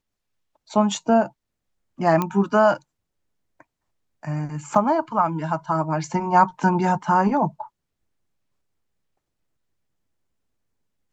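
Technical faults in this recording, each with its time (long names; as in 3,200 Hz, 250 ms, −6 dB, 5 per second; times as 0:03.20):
0:02.22: click −10 dBFS
0:04.75: drop-out 2.8 ms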